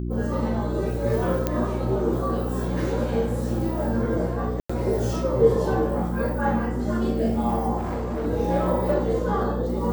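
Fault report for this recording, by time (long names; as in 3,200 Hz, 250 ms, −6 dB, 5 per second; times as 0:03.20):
mains hum 60 Hz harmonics 6 −28 dBFS
0:01.47: click −9 dBFS
0:04.60–0:04.70: drop-out 95 ms
0:07.77–0:08.27: clipping −24 dBFS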